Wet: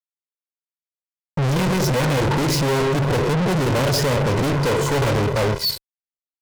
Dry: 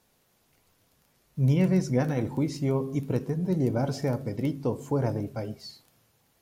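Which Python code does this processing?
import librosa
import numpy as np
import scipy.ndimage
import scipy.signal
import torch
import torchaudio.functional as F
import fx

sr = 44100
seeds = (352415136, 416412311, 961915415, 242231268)

y = fx.law_mismatch(x, sr, coded='mu')
y = scipy.signal.sosfilt(scipy.signal.butter(2, 91.0, 'highpass', fs=sr, output='sos'), y)
y = fx.noise_reduce_blind(y, sr, reduce_db=7)
y = scipy.signal.sosfilt(scipy.signal.butter(2, 5900.0, 'lowpass', fs=sr, output='sos'), y)
y = fx.fuzz(y, sr, gain_db=37.0, gate_db=-44.0)
y = y + 0.71 * np.pad(y, (int(2.0 * sr / 1000.0), 0))[:len(y)]
y = 10.0 ** (-23.5 / 20.0) * np.tanh(y / 10.0 ** (-23.5 / 20.0))
y = y * 10.0 ** (6.0 / 20.0)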